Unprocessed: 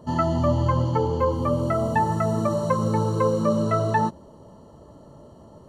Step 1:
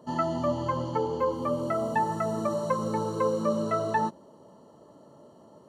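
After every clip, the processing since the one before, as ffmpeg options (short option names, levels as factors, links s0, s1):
-af "highpass=200,volume=0.631"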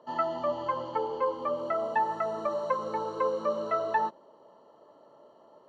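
-filter_complex "[0:a]acrossover=split=390 4500:gain=0.141 1 0.0708[s0][s1][s2];[s0][s1][s2]amix=inputs=3:normalize=0"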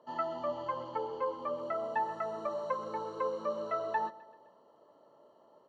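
-af "aecho=1:1:129|258|387|516:0.106|0.0572|0.0309|0.0167,volume=0.531"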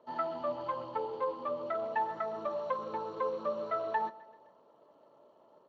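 -ar 16000 -c:a libspeex -b:a 21k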